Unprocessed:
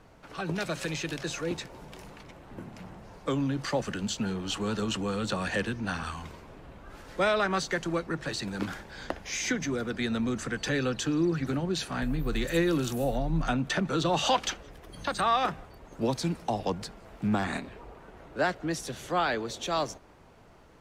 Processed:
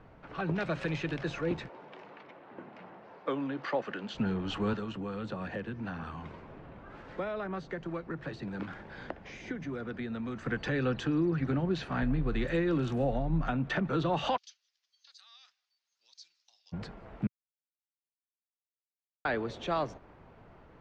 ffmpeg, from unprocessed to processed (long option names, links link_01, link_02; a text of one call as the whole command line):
ffmpeg -i in.wav -filter_complex "[0:a]asettb=1/sr,asplit=3[link_01][link_02][link_03];[link_01]atrim=end=1.694[link_04];[link_02]atrim=start=1.69:end=4.15,asetpts=PTS-STARTPTS,afade=type=in:duration=0.004:curve=qsin,afade=type=out:start_time=2.456:duration=0.004:curve=qsin,highpass=340,lowpass=5100[link_05];[link_03]atrim=start=4.146[link_06];[link_04][link_05]acrossfade=duration=0.004:curve1=hsin:curve2=qsin[link_07];[link_07][link_06]acrossfade=duration=0.004:curve1=qsin:curve2=hsin,asettb=1/sr,asplit=3[link_08][link_09][link_10];[link_08]atrim=end=4.734[link_11];[link_09]atrim=start=4.73:end=10.46,asetpts=PTS-STARTPTS,afade=type=in:duration=0.004:curve=qsin,afade=type=out:start_time=5.726:duration=0.004:curve=qsin,acrossover=split=100|730[link_12][link_13][link_14];[link_12]acompressor=threshold=-57dB:ratio=4[link_15];[link_13]acompressor=threshold=-37dB:ratio=4[link_16];[link_14]acompressor=threshold=-43dB:ratio=4[link_17];[link_15][link_16][link_17]amix=inputs=3:normalize=0[link_18];[link_10]atrim=start=10.456[link_19];[link_11][link_18]acrossfade=duration=0.004:curve1=hsin:curve2=qsin[link_20];[link_20][link_19]acrossfade=duration=0.004:curve1=qsin:curve2=hsin,asplit=3[link_21][link_22][link_23];[link_21]afade=type=out:start_time=14.36:duration=0.02[link_24];[link_22]asuperpass=centerf=5500:order=4:qfactor=2.3,afade=type=in:start_time=14.36:duration=0.02,afade=type=out:start_time=16.72:duration=0.02[link_25];[link_23]afade=type=in:start_time=16.72:duration=0.02[link_26];[link_24][link_25][link_26]amix=inputs=3:normalize=0,asplit=3[link_27][link_28][link_29];[link_27]atrim=end=17.27,asetpts=PTS-STARTPTS,afade=type=out:start_time=17.266:duration=0.004:curve=hsin[link_30];[link_28]atrim=start=17.27:end=19.25,asetpts=PTS-STARTPTS,volume=0[link_31];[link_29]atrim=start=19.25,asetpts=PTS-STARTPTS,afade=type=in:duration=0.004:curve=hsin[link_32];[link_30][link_31][link_32]concat=n=3:v=0:a=1,lowpass=2500,equalizer=frequency=130:width=1.5:gain=2.5,alimiter=limit=-20.5dB:level=0:latency=1:release=266" out.wav